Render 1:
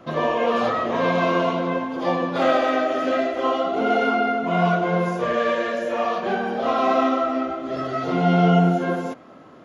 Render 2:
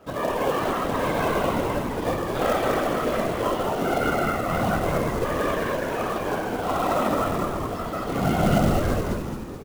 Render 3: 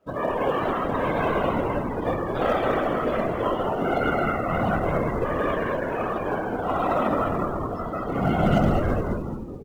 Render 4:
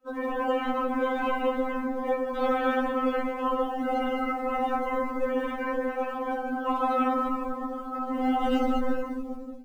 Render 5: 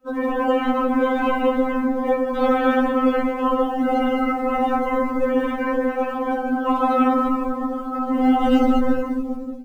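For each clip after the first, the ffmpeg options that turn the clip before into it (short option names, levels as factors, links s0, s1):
-filter_complex "[0:a]afftfilt=real='hypot(re,im)*cos(2*PI*random(0))':imag='hypot(re,im)*sin(2*PI*random(1))':win_size=512:overlap=0.75,acrusher=bits=4:mode=log:mix=0:aa=0.000001,asplit=9[s0][s1][s2][s3][s4][s5][s6][s7][s8];[s1]adelay=214,afreqshift=-120,volume=0.631[s9];[s2]adelay=428,afreqshift=-240,volume=0.367[s10];[s3]adelay=642,afreqshift=-360,volume=0.211[s11];[s4]adelay=856,afreqshift=-480,volume=0.123[s12];[s5]adelay=1070,afreqshift=-600,volume=0.0716[s13];[s6]adelay=1284,afreqshift=-720,volume=0.0412[s14];[s7]adelay=1498,afreqshift=-840,volume=0.024[s15];[s8]adelay=1712,afreqshift=-960,volume=0.014[s16];[s0][s9][s10][s11][s12][s13][s14][s15][s16]amix=inputs=9:normalize=0,volume=1.12"
-af "afftdn=nr=17:nf=-37"
-af "afftfilt=real='re*3.46*eq(mod(b,12),0)':imag='im*3.46*eq(mod(b,12),0)':win_size=2048:overlap=0.75,volume=0.891"
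-af "equalizer=f=79:w=0.43:g=11,volume=1.88"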